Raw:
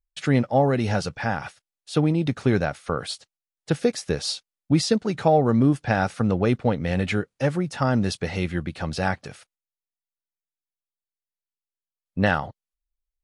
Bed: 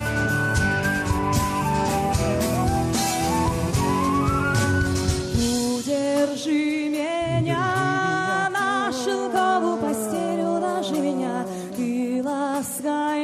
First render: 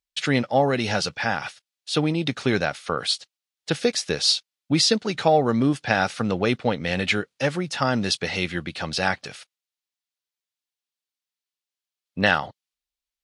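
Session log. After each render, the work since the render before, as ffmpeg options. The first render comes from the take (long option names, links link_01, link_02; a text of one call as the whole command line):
ffmpeg -i in.wav -af "highpass=frequency=190:poles=1,equalizer=frequency=3800:width=0.61:gain=9.5" out.wav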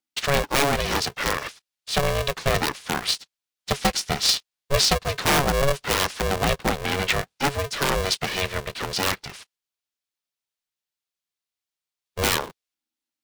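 ffmpeg -i in.wav -filter_complex "[0:a]acrossover=split=310|3000[link_01][link_02][link_03];[link_02]aeval=exprs='(mod(4.73*val(0)+1,2)-1)/4.73':channel_layout=same[link_04];[link_01][link_04][link_03]amix=inputs=3:normalize=0,aeval=exprs='val(0)*sgn(sin(2*PI*280*n/s))':channel_layout=same" out.wav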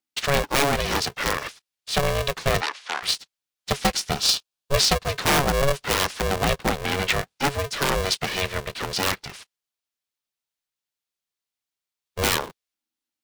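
ffmpeg -i in.wav -filter_complex "[0:a]asplit=3[link_01][link_02][link_03];[link_01]afade=type=out:start_time=2.6:duration=0.02[link_04];[link_02]highpass=710,lowpass=5500,afade=type=in:start_time=2.6:duration=0.02,afade=type=out:start_time=3.02:duration=0.02[link_05];[link_03]afade=type=in:start_time=3.02:duration=0.02[link_06];[link_04][link_05][link_06]amix=inputs=3:normalize=0,asettb=1/sr,asplit=3[link_07][link_08][link_09];[link_07]atrim=end=4.114[link_10];[link_08]atrim=start=4.11:end=4.74,asetpts=PTS-STARTPTS,afade=type=in:duration=0.004:curve=qsin,afade=type=out:start_time=0.626:duration=0.004:curve=qsin,equalizer=frequency=2000:width_type=o:width=0.2:gain=-12.5[link_11];[link_09]atrim=start=4.736[link_12];[link_10][link_11]acrossfade=duration=0.004:curve1=hsin:curve2=qsin[link_13];[link_13][link_12]acrossfade=duration=0.004:curve1=qsin:curve2=hsin" out.wav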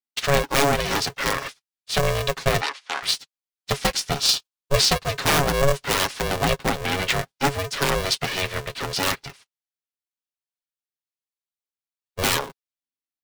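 ffmpeg -i in.wav -af "agate=range=-12dB:threshold=-35dB:ratio=16:detection=peak,aecho=1:1:7.3:0.45" out.wav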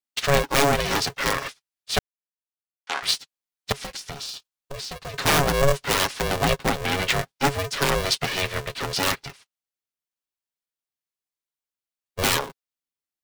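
ffmpeg -i in.wav -filter_complex "[0:a]asettb=1/sr,asplit=3[link_01][link_02][link_03];[link_01]atrim=end=3.724[link_04];[link_02]atrim=start=3.72:end=5.14,asetpts=PTS-STARTPTS,afade=type=in:duration=0.004:curve=qsin,afade=type=out:start_time=1.416:duration=0.004:curve=qsin,acompressor=threshold=-30dB:ratio=16:attack=3.2:release=140:knee=1:detection=peak[link_05];[link_03]atrim=start=5.136[link_06];[link_04][link_05]acrossfade=duration=0.004:curve1=hsin:curve2=qsin[link_07];[link_07][link_06]acrossfade=duration=0.004:curve1=qsin:curve2=hsin,asplit=3[link_08][link_09][link_10];[link_08]atrim=end=1.99,asetpts=PTS-STARTPTS,afade=type=out:start_time=1.986:duration=0.004:curve=hsin[link_11];[link_09]atrim=start=1.99:end=2.87,asetpts=PTS-STARTPTS,volume=0[link_12];[link_10]atrim=start=2.87,asetpts=PTS-STARTPTS,afade=type=in:duration=0.004:curve=hsin[link_13];[link_11][link_12][link_13]concat=n=3:v=0:a=1" out.wav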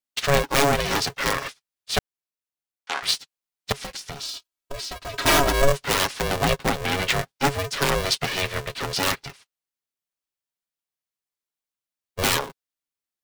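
ffmpeg -i in.wav -filter_complex "[0:a]asettb=1/sr,asplit=3[link_01][link_02][link_03];[link_01]atrim=end=4.234[link_04];[link_02]atrim=start=4.23:end=5.68,asetpts=PTS-STARTPTS,afade=type=in:duration=0.004:curve=qsin,afade=type=out:start_time=1.446:duration=0.004:curve=qsin,aecho=1:1:3.1:0.68,atrim=end_sample=63945[link_05];[link_03]atrim=start=5.676[link_06];[link_04][link_05]acrossfade=duration=0.004:curve1=hsin:curve2=qsin[link_07];[link_07][link_06]acrossfade=duration=0.004:curve1=qsin:curve2=hsin" out.wav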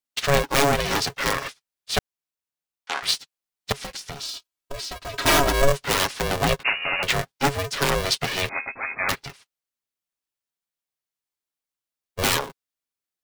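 ffmpeg -i in.wav -filter_complex "[0:a]asettb=1/sr,asplit=3[link_01][link_02][link_03];[link_01]atrim=end=6.634[link_04];[link_02]atrim=start=6.63:end=7.03,asetpts=PTS-STARTPTS,afade=type=in:duration=0.004:curve=qsin,afade=type=out:start_time=0.396:duration=0.004:curve=qsin,lowpass=frequency=2500:width_type=q:width=0.5098,lowpass=frequency=2500:width_type=q:width=0.6013,lowpass=frequency=2500:width_type=q:width=0.9,lowpass=frequency=2500:width_type=q:width=2.563,afreqshift=-2900[link_05];[link_03]atrim=start=7.026[link_06];[link_04][link_05]acrossfade=duration=0.004:curve1=hsin:curve2=qsin[link_07];[link_07][link_06]acrossfade=duration=0.004:curve1=qsin:curve2=hsin,asettb=1/sr,asplit=3[link_08][link_09][link_10];[link_08]atrim=end=8.494[link_11];[link_09]atrim=start=8.49:end=9.09,asetpts=PTS-STARTPTS,afade=type=in:duration=0.004:curve=qsin,afade=type=out:start_time=0.596:duration=0.004:curve=qsin,lowpass=frequency=2200:width_type=q:width=0.5098,lowpass=frequency=2200:width_type=q:width=0.6013,lowpass=frequency=2200:width_type=q:width=0.9,lowpass=frequency=2200:width_type=q:width=2.563,afreqshift=-2600[link_12];[link_10]atrim=start=9.086[link_13];[link_11][link_12]acrossfade=duration=0.004:curve1=hsin:curve2=qsin[link_14];[link_14][link_13]acrossfade=duration=0.004:curve1=qsin:curve2=hsin" out.wav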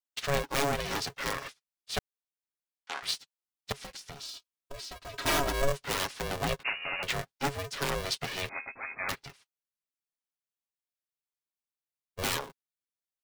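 ffmpeg -i in.wav -af "volume=-9.5dB" out.wav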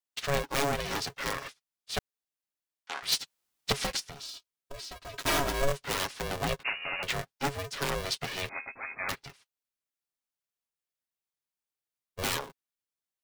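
ffmpeg -i in.wav -filter_complex "[0:a]asplit=3[link_01][link_02][link_03];[link_01]afade=type=out:start_time=3.11:duration=0.02[link_04];[link_02]aeval=exprs='0.106*sin(PI/2*2.82*val(0)/0.106)':channel_layout=same,afade=type=in:start_time=3.11:duration=0.02,afade=type=out:start_time=3.99:duration=0.02[link_05];[link_03]afade=type=in:start_time=3.99:duration=0.02[link_06];[link_04][link_05][link_06]amix=inputs=3:normalize=0,asettb=1/sr,asplit=3[link_07][link_08][link_09];[link_07]atrim=end=5.194[link_10];[link_08]atrim=start=5.19:end=5.73,asetpts=PTS-STARTPTS,afade=type=in:duration=0.004:curve=qsin,afade=type=out:start_time=0.536:duration=0.004:curve=qsin,aeval=exprs='val(0)*gte(abs(val(0)),0.0224)':channel_layout=same[link_11];[link_09]atrim=start=5.726[link_12];[link_10][link_11]acrossfade=duration=0.004:curve1=hsin:curve2=qsin[link_13];[link_13][link_12]acrossfade=duration=0.004:curve1=qsin:curve2=hsin" out.wav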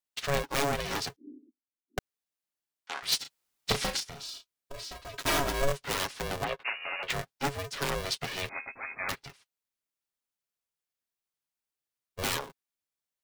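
ffmpeg -i in.wav -filter_complex "[0:a]asettb=1/sr,asplit=3[link_01][link_02][link_03];[link_01]atrim=end=1.164[link_04];[link_02]atrim=start=1.16:end=1.98,asetpts=PTS-STARTPTS,afade=type=in:duration=0.004:curve=qsin,afade=type=out:start_time=0.816:duration=0.004:curve=qsin,asuperpass=centerf=280:order=8:qfactor=2.3[link_05];[link_03]atrim=start=1.976[link_06];[link_04][link_05]acrossfade=duration=0.004:curve1=hsin:curve2=qsin[link_07];[link_07][link_06]acrossfade=duration=0.004:curve1=qsin:curve2=hsin,asettb=1/sr,asplit=3[link_08][link_09][link_10];[link_08]atrim=end=3.214[link_11];[link_09]atrim=start=3.21:end=5.06,asetpts=PTS-STARTPTS,afade=type=in:duration=0.004:curve=qsin,afade=type=out:start_time=1.846:duration=0.004:curve=qsin,asplit=2[link_12][link_13];[link_13]adelay=35,volume=-7dB[link_14];[link_12][link_14]amix=inputs=2:normalize=0,atrim=end_sample=81585[link_15];[link_10]atrim=start=5.056[link_16];[link_11][link_15]acrossfade=duration=0.004:curve1=hsin:curve2=qsin[link_17];[link_17][link_16]acrossfade=duration=0.004:curve1=qsin:curve2=hsin,asettb=1/sr,asplit=3[link_18][link_19][link_20];[link_18]atrim=end=6.444[link_21];[link_19]atrim=start=6.44:end=7.1,asetpts=PTS-STARTPTS,afade=type=in:duration=0.004:curve=qsin,afade=type=out:start_time=0.656:duration=0.004:curve=qsin,acrossover=split=340 3600:gain=0.224 1 0.158[link_22][link_23][link_24];[link_22][link_23][link_24]amix=inputs=3:normalize=0[link_25];[link_20]atrim=start=7.096[link_26];[link_21][link_25]acrossfade=duration=0.004:curve1=hsin:curve2=qsin[link_27];[link_27][link_26]acrossfade=duration=0.004:curve1=qsin:curve2=hsin" out.wav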